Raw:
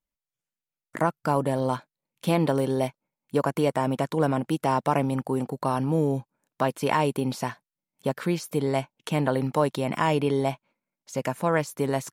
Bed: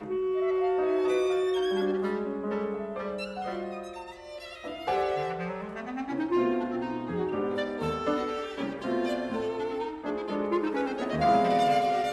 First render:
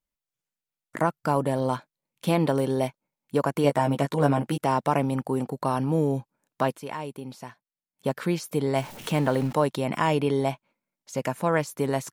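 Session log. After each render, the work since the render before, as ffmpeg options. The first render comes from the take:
-filter_complex "[0:a]asettb=1/sr,asplit=3[a][b][c];[a]atrim=end=3.634[d];[b]atrim=start=3.63:end=4.58,asetpts=PTS-STARTPTS,afade=t=in:d=0.004:c=qsin,afade=t=out:st=0.946:d=0.004:c=qsin,asplit=2[e][f];[f]adelay=14,volume=-4dB[g];[e][g]amix=inputs=2:normalize=0,atrim=end_sample=41895[h];[c]atrim=start=4.576[i];[d][h]acrossfade=d=0.004:c1=hsin:c2=qsin[j];[j][i]acrossfade=d=0.004:c1=qsin:c2=hsin,asettb=1/sr,asplit=3[k][l][m];[k]atrim=end=8.764[n];[l]atrim=start=8.76:end=9.53,asetpts=PTS-STARTPTS,afade=t=in:d=0.004:c=qsin,afade=t=out:st=0.766:d=0.004:c=qsin,aeval=exprs='val(0)+0.5*0.0168*sgn(val(0))':c=same[o];[m]atrim=start=9.526[p];[n][o]acrossfade=d=0.004:c1=hsin:c2=qsin[q];[q][p]acrossfade=d=0.004:c1=qsin:c2=hsin,asplit=3[r][s][t];[r]atrim=end=6.82,asetpts=PTS-STARTPTS,afade=t=out:st=6.7:d=0.12:silence=0.281838[u];[s]atrim=start=6.82:end=7.95,asetpts=PTS-STARTPTS,volume=-11dB[v];[t]atrim=start=7.95,asetpts=PTS-STARTPTS,afade=t=in:d=0.12:silence=0.281838[w];[u][v][w]concat=n=3:v=0:a=1"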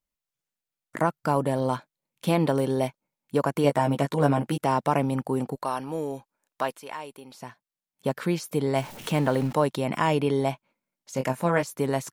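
-filter_complex "[0:a]asettb=1/sr,asplit=3[a][b][c];[a]atrim=end=5.554[d];[b]atrim=start=5.55:end=7.35,asetpts=PTS-STARTPTS,afade=t=in:d=0.004:c=qsin,afade=t=out:st=1.796:d=0.004:c=qsin,equalizer=f=110:w=0.4:g=-15[e];[c]atrim=start=7.346[f];[d][e]acrossfade=d=0.004:c1=hsin:c2=qsin[g];[g][f]acrossfade=d=0.004:c1=qsin:c2=hsin,asettb=1/sr,asplit=3[h][i][j];[h]atrim=end=11.144[k];[i]atrim=start=11.14:end=11.63,asetpts=PTS-STARTPTS,afade=t=in:d=0.004:c=qsin,afade=t=out:st=0.486:d=0.004:c=qsin,asplit=2[l][m];[m]adelay=23,volume=-7dB[n];[l][n]amix=inputs=2:normalize=0,atrim=end_sample=21609[o];[j]atrim=start=11.626[p];[k][o]acrossfade=d=0.004:c1=hsin:c2=qsin[q];[q][p]acrossfade=d=0.004:c1=qsin:c2=hsin"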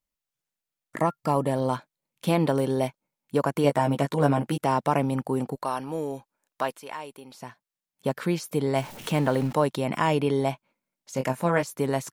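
-filter_complex "[0:a]asettb=1/sr,asplit=3[a][b][c];[a]atrim=end=0.964[d];[b]atrim=start=0.96:end=1.51,asetpts=PTS-STARTPTS,afade=t=in:d=0.004:c=qsin,afade=t=out:st=0.546:d=0.004:c=qsin,asuperstop=centerf=1500:order=20:qfactor=6.8[e];[c]atrim=start=1.506[f];[d][e]acrossfade=d=0.004:c1=hsin:c2=qsin[g];[g][f]acrossfade=d=0.004:c1=qsin:c2=hsin"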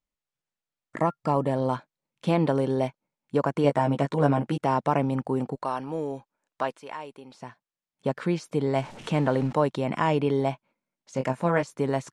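-af "lowpass=f=9.1k:w=0.5412,lowpass=f=9.1k:w=1.3066,highshelf=f=3.6k:g=-7.5"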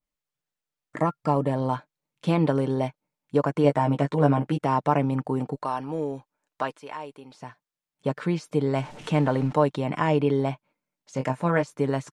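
-af "aecho=1:1:6.7:0.35,adynamicequalizer=threshold=0.00794:dfrequency=3400:dqfactor=0.7:tfrequency=3400:tqfactor=0.7:attack=5:release=100:ratio=0.375:range=1.5:mode=cutabove:tftype=highshelf"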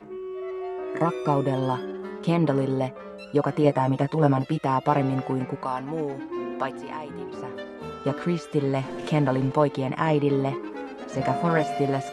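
-filter_complex "[1:a]volume=-6dB[a];[0:a][a]amix=inputs=2:normalize=0"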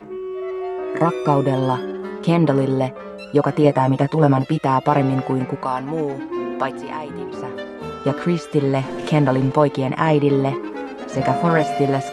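-af "volume=6dB,alimiter=limit=-3dB:level=0:latency=1"

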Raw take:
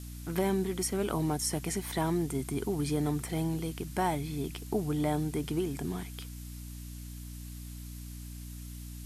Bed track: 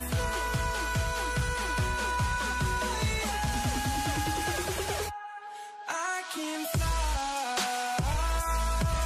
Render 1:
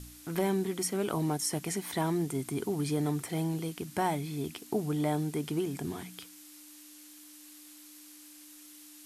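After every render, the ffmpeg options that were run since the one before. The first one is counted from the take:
-af "bandreject=f=60:t=h:w=4,bandreject=f=120:t=h:w=4,bandreject=f=180:t=h:w=4,bandreject=f=240:t=h:w=4"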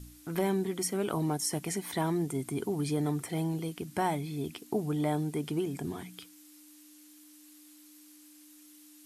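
-af "afftdn=nr=6:nf=-52"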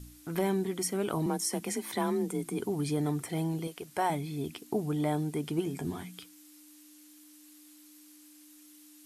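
-filter_complex "[0:a]asettb=1/sr,asplit=3[a][b][c];[a]atrim=end=1.264[d];[b]atrim=start=1.26:end=2.59,asetpts=PTS-STARTPTS,afade=t=in:d=0.004:c=qsin,afade=t=out:st=1.326:d=0.004:c=qsin,afreqshift=34[e];[c]atrim=start=2.586[f];[d][e]acrossfade=d=0.004:c1=hsin:c2=qsin[g];[g][f]acrossfade=d=0.004:c1=qsin:c2=hsin,asettb=1/sr,asplit=3[h][i][j];[h]atrim=end=3.674[k];[i]atrim=start=3.67:end=4.1,asetpts=PTS-STARTPTS,afade=t=in:d=0.004:c=qsin,afade=t=out:st=0.426:d=0.004:c=qsin,lowshelf=f=350:t=q:w=1.5:g=-8.5[l];[j]atrim=start=4.096[m];[k][l]acrossfade=d=0.004:c1=hsin:c2=qsin[n];[n][m]acrossfade=d=0.004:c1=qsin:c2=hsin,asettb=1/sr,asplit=3[o][p][q];[o]atrim=end=5.574[r];[p]atrim=start=5.57:end=6.2,asetpts=PTS-STARTPTS,afade=t=in:d=0.004:c=qsin,afade=t=out:st=0.626:d=0.004:c=qsin,asplit=2[s][t];[t]adelay=12,volume=-7dB[u];[s][u]amix=inputs=2:normalize=0,atrim=end_sample=27783[v];[q]atrim=start=6.196[w];[r][v]acrossfade=d=0.004:c1=hsin:c2=qsin[x];[x][w]acrossfade=d=0.004:c1=qsin:c2=hsin"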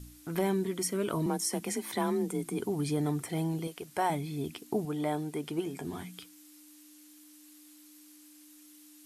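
-filter_complex "[0:a]asettb=1/sr,asplit=3[a][b][c];[a]atrim=end=0.534[d];[b]atrim=start=0.53:end=1.26,asetpts=PTS-STARTPTS,afade=t=in:d=0.004:c=qsin,afade=t=out:st=0.726:d=0.004:c=qsin,asuperstop=centerf=790:order=4:qfactor=5.7[e];[c]atrim=start=1.256[f];[d][e]acrossfade=d=0.004:c1=hsin:c2=qsin[g];[g][f]acrossfade=d=0.004:c1=qsin:c2=hsin,asettb=1/sr,asplit=3[h][i][j];[h]atrim=end=4.854[k];[i]atrim=start=4.85:end=5.93,asetpts=PTS-STARTPTS,afade=t=in:d=0.004:c=qsin,afade=t=out:st=1.076:d=0.004:c=qsin,bass=f=250:g=-7,treble=f=4k:g=-2[l];[j]atrim=start=5.926[m];[k][l]acrossfade=d=0.004:c1=hsin:c2=qsin[n];[n][m]acrossfade=d=0.004:c1=qsin:c2=hsin"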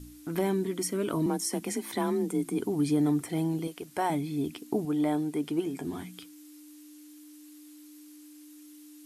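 -af "equalizer=f=290:w=3.5:g=8"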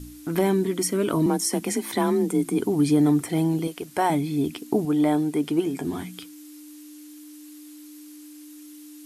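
-af "volume=6.5dB"

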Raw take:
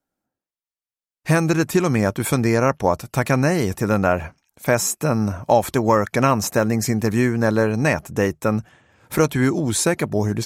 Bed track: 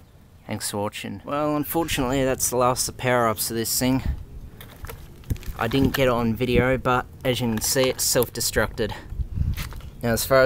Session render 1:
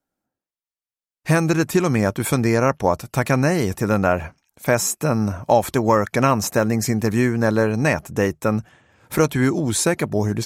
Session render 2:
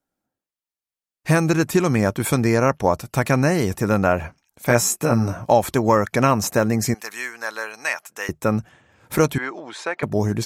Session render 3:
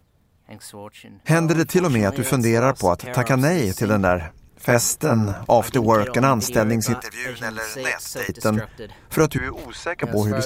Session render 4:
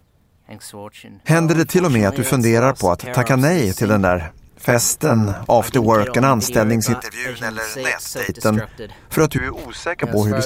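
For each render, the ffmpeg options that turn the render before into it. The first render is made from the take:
-af anull
-filter_complex "[0:a]asettb=1/sr,asplit=3[a][b][c];[a]atrim=end=4.684[d];[b]atrim=start=4.68:end=5.5,asetpts=PTS-STARTPTS,afade=t=in:d=0.004:c=qsin,afade=t=out:st=0.816:d=0.004:c=qsin,asplit=2[e][f];[f]adelay=17,volume=-4dB[g];[e][g]amix=inputs=2:normalize=0,atrim=end_sample=36162[h];[c]atrim=start=5.496[i];[d][h]acrossfade=d=0.004:c1=hsin:c2=qsin[j];[j][i]acrossfade=d=0.004:c1=qsin:c2=hsin,asettb=1/sr,asplit=3[k][l][m];[k]atrim=end=6.944[n];[l]atrim=start=6.94:end=8.29,asetpts=PTS-STARTPTS,afade=t=in:d=0.004:c=qsin,afade=t=out:st=1.346:d=0.004:c=qsin,highpass=1.2k[o];[m]atrim=start=8.286[p];[n][o]acrossfade=d=0.004:c1=hsin:c2=qsin[q];[q][p]acrossfade=d=0.004:c1=qsin:c2=hsin,asettb=1/sr,asplit=3[r][s][t];[r]atrim=end=9.384[u];[s]atrim=start=9.38:end=10.03,asetpts=PTS-STARTPTS,afade=t=in:d=0.004:c=qsin,afade=t=out:st=0.646:d=0.004:c=qsin,highpass=740,lowpass=2.6k[v];[t]atrim=start=10.026[w];[u][v]acrossfade=d=0.004:c1=hsin:c2=qsin[x];[x][w]acrossfade=d=0.004:c1=qsin:c2=hsin"
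-filter_complex "[1:a]volume=-11dB[a];[0:a][a]amix=inputs=2:normalize=0"
-af "volume=3.5dB,alimiter=limit=-3dB:level=0:latency=1"

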